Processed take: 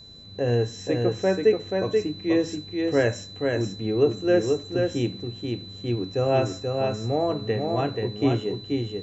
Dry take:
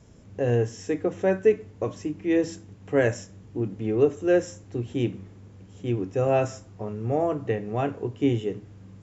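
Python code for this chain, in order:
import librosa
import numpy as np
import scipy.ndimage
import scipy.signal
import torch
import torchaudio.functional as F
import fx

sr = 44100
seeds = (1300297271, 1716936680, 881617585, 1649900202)

y = x + 10.0 ** (-45.0 / 20.0) * np.sin(2.0 * np.pi * 4000.0 * np.arange(len(x)) / sr)
y = y + 10.0 ** (-4.0 / 20.0) * np.pad(y, (int(482 * sr / 1000.0), 0))[:len(y)]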